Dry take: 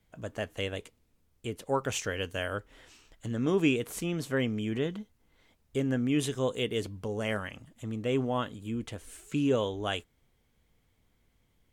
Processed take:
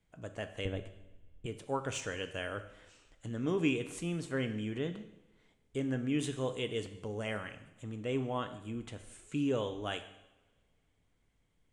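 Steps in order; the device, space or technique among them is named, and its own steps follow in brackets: steep low-pass 9500 Hz 36 dB/oct; 0.65–1.46 tilt -3.5 dB/oct; two-slope reverb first 0.84 s, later 2.2 s, from -20 dB, DRR 8.5 dB; exciter from parts (in parallel at -8 dB: HPF 4700 Hz 12 dB/oct + soft clip -31.5 dBFS, distortion -17 dB + HPF 2400 Hz 24 dB/oct); on the sum: gain -5.5 dB

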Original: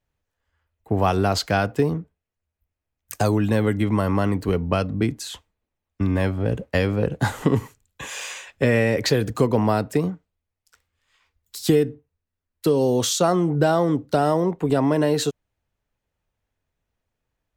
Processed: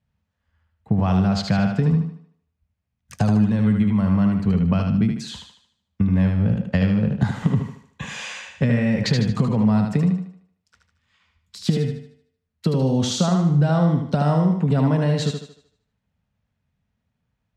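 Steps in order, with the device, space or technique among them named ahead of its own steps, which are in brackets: jukebox (LPF 5400 Hz 12 dB/oct; resonant low shelf 260 Hz +7.5 dB, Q 3; compressor, threshold -16 dBFS, peak gain reduction 11 dB); HPF 60 Hz; thinning echo 76 ms, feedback 44%, high-pass 170 Hz, level -4.5 dB

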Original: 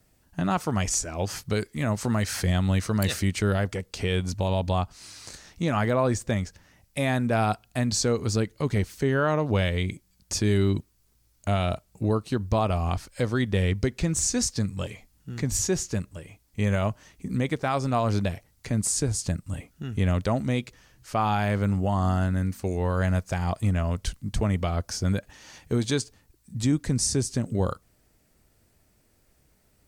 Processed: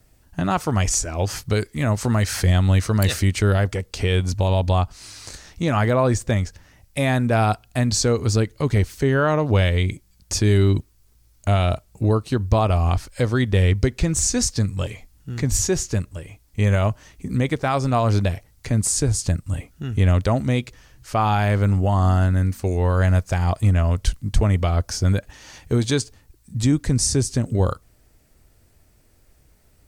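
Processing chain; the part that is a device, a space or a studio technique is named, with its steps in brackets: low shelf boost with a cut just above (low shelf 97 Hz +7.5 dB; bell 190 Hz -4 dB 0.56 oct); gain +4.5 dB

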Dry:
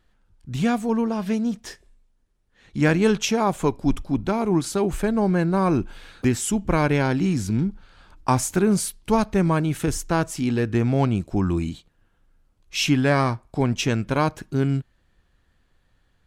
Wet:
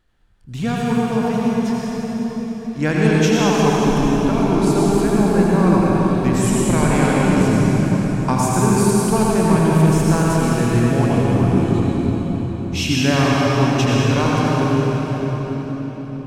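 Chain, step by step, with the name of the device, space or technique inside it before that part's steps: cathedral (reverb RT60 5.4 s, pre-delay 73 ms, DRR -6 dB); gain -1.5 dB

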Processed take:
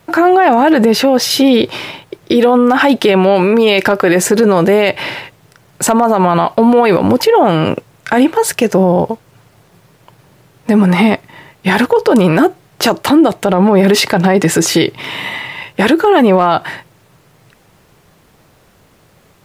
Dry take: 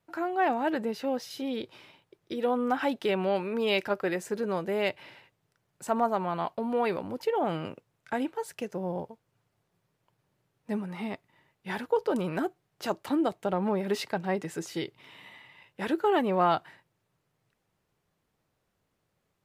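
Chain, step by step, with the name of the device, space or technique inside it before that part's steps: loud club master (compressor 2.5:1, threshold -28 dBFS, peak gain reduction 6 dB; hard clip -20 dBFS, distortion -37 dB; maximiser +29.5 dB); gain -1 dB

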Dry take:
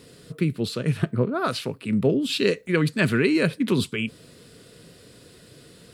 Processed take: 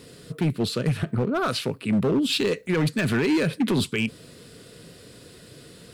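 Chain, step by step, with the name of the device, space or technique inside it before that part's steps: limiter into clipper (limiter -14.5 dBFS, peak gain reduction 8 dB; hard clip -20 dBFS, distortion -15 dB); gain +2.5 dB

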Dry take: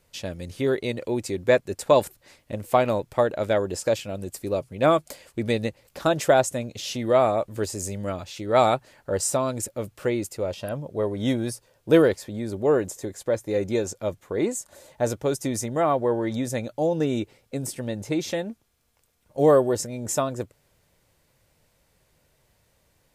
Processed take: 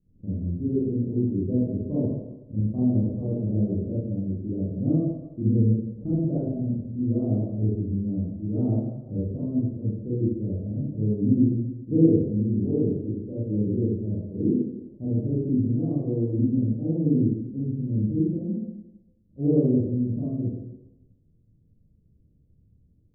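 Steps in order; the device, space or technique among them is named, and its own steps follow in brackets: next room (LPF 270 Hz 24 dB/oct; reverb RT60 1.0 s, pre-delay 27 ms, DRR -10 dB); notches 50/100/150 Hz; gain -1.5 dB

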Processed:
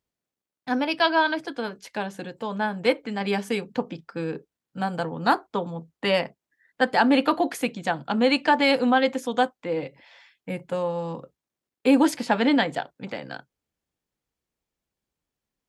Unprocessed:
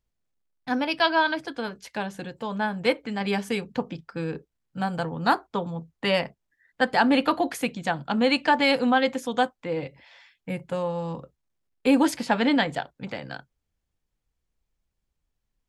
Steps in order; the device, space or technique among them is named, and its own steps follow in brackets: filter by subtraction (in parallel: LPF 300 Hz 12 dB/oct + phase invert)

